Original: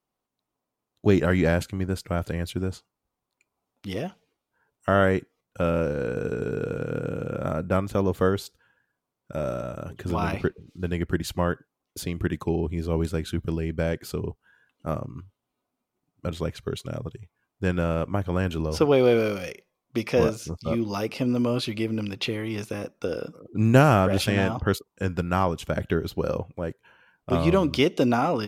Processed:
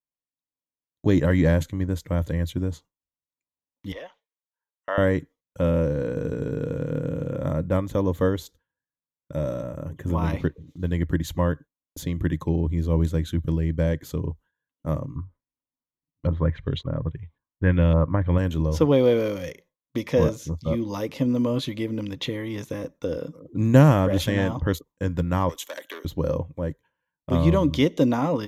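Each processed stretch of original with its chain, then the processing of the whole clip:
3.92–4.98 HPF 280 Hz + three-band isolator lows -21 dB, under 550 Hz, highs -16 dB, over 4500 Hz
9.63–10.24 bell 4200 Hz -14.5 dB 0.59 oct + short-mantissa float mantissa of 6-bit
15.16–18.38 low shelf 110 Hz +8 dB + LFO low-pass saw up 1.8 Hz 980–3700 Hz
25.49–26.05 Bessel high-pass 470 Hz, order 8 + tilt +3 dB/oct + core saturation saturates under 2800 Hz
whole clip: ripple EQ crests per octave 1.1, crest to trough 8 dB; gate with hold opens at -39 dBFS; low shelf 340 Hz +7 dB; gain -3.5 dB

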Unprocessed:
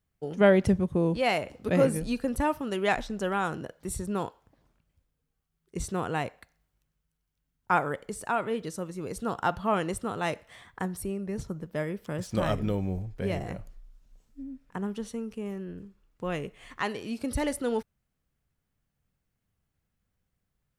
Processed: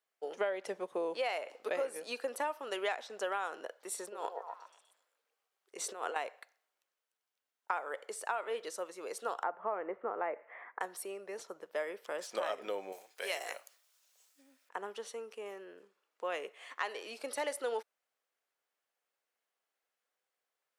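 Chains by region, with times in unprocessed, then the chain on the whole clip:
3.98–6.16 HPF 140 Hz + negative-ratio compressor -34 dBFS, ratio -0.5 + delay with a stepping band-pass 0.124 s, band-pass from 570 Hz, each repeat 0.7 oct, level -2 dB
9.43–10.81 Chebyshev band-pass 120–2200 Hz, order 4 + tilt shelf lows +6.5 dB, about 790 Hz + mismatched tape noise reduction encoder only
12.92–14.69 HPF 51 Hz + tilt +4.5 dB/oct
whole clip: HPF 470 Hz 24 dB/oct; high shelf 8500 Hz -6 dB; compressor 10:1, threshold -31 dBFS

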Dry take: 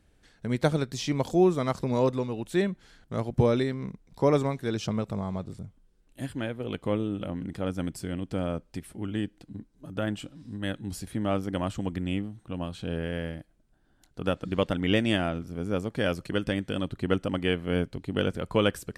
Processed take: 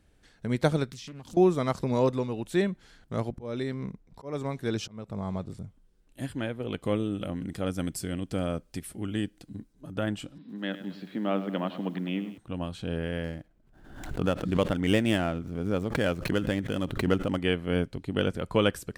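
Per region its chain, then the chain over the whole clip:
0.9–1.37 band shelf 580 Hz -12.5 dB 1.3 oct + compressor, threshold -40 dBFS + Doppler distortion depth 0.48 ms
3.31–5.5 auto swell 0.411 s + mismatched tape noise reduction decoder only
6.82–9.73 high shelf 4600 Hz +8 dB + notch 910 Hz, Q 9.8
10.38–12.38 Chebyshev band-pass 170–4000 Hz, order 4 + lo-fi delay 0.102 s, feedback 55%, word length 9-bit, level -13 dB
13.24–17.38 median filter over 9 samples + backwards sustainer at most 62 dB/s
whole clip: dry

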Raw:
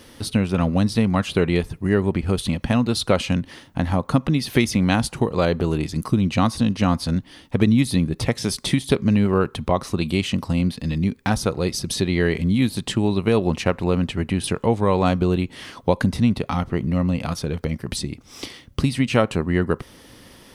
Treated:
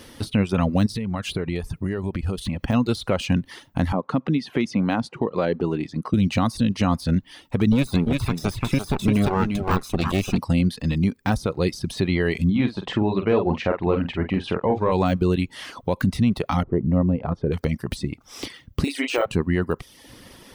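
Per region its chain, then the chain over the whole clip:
0.86–2.68 low shelf 140 Hz +4 dB + compressor, threshold -23 dBFS
3.92–6.14 HPF 180 Hz + tape spacing loss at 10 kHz 23 dB
7.72–10.38 minimum comb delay 0.79 ms + echo 0.345 s -5.5 dB
12.5–14.92 doubler 47 ms -6 dB + overdrive pedal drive 10 dB, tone 1100 Hz, clips at -5 dBFS + air absorption 120 m
16.63–17.52 LPF 1000 Hz + bell 400 Hz +5 dB 0.62 oct
18.84–19.26 brick-wall FIR high-pass 270 Hz + doubler 35 ms -3 dB
whole clip: reverb removal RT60 0.58 s; de-esser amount 75%; limiter -12.5 dBFS; gain +2 dB

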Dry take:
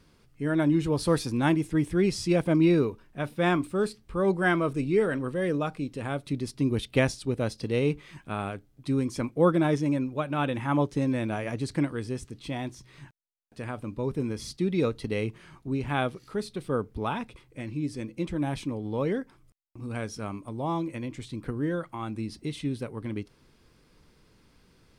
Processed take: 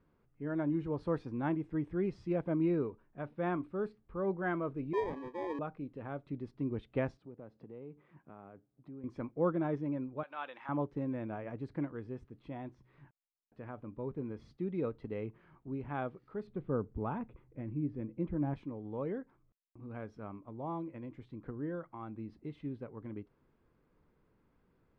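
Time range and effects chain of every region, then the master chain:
4.93–5.59 steep high-pass 270 Hz 72 dB/oct + sample-rate reducer 1400 Hz
7.17–9.04 HPF 120 Hz + high shelf 2100 Hz -11.5 dB + compressor 2.5:1, threshold -40 dBFS
10.23–10.69 HPF 840 Hz + bell 4500 Hz +12.5 dB 1.4 oct
16.47–18.54 LPF 2900 Hz + low shelf 330 Hz +8.5 dB
whole clip: LPF 1400 Hz 12 dB/oct; low shelf 180 Hz -4 dB; gain -8.5 dB

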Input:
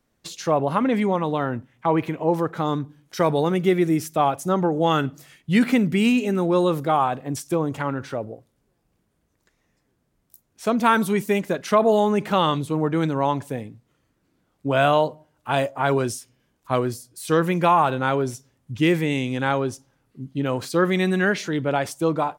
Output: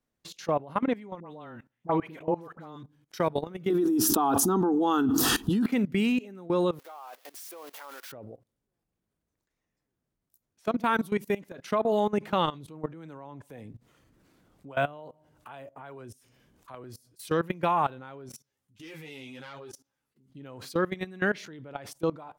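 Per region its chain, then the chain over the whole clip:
1.2–2.83 bell 97 Hz -5.5 dB 0.82 oct + dispersion highs, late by 71 ms, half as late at 1000 Hz
3.7–5.66 bell 220 Hz +10 dB 0.82 oct + fixed phaser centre 580 Hz, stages 6 + fast leveller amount 100%
6.79–8.12 switching spikes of -19 dBFS + Bessel high-pass 780 Hz, order 4 + tilt -2 dB/oct
12.93–16.84 dynamic EQ 4600 Hz, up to -7 dB, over -47 dBFS, Q 1.6 + upward compressor, threshold -30 dBFS + harmonic tremolo 2.5 Hz, depth 50%, crossover 460 Hz
18.29–20.3 self-modulated delay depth 0.094 ms + tilt +2 dB/oct + ensemble effect
whole clip: dynamic EQ 7800 Hz, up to -6 dB, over -49 dBFS, Q 1.3; level quantiser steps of 20 dB; gain -4 dB

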